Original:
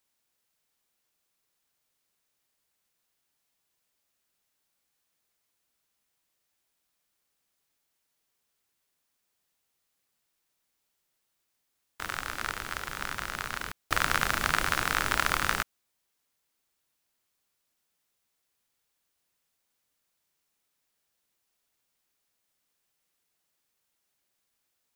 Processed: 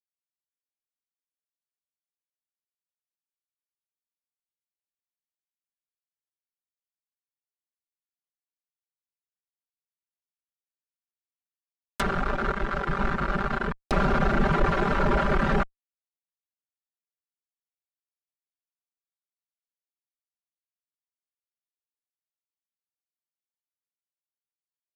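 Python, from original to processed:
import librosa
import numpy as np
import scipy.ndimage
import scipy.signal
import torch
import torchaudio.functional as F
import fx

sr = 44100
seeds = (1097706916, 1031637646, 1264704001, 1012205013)

y = fx.dereverb_blind(x, sr, rt60_s=1.6)
y = fx.fuzz(y, sr, gain_db=42.0, gate_db=-50.0)
y = y + 0.98 * np.pad(y, (int(5.1 * sr / 1000.0), 0))[:len(y)]
y = fx.env_lowpass_down(y, sr, base_hz=1400.0, full_db=-15.5)
y = y * 10.0 ** (-6.5 / 20.0)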